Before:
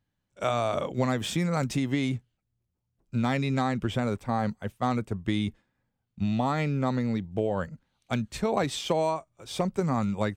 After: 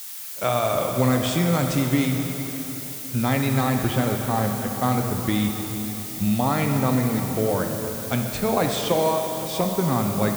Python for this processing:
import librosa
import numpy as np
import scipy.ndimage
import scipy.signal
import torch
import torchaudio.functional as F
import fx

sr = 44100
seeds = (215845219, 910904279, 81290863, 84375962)

y = fx.dmg_noise_colour(x, sr, seeds[0], colour='blue', level_db=-40.0)
y = fx.rev_plate(y, sr, seeds[1], rt60_s=4.0, hf_ratio=0.85, predelay_ms=0, drr_db=2.5)
y = y * 10.0 ** (3.5 / 20.0)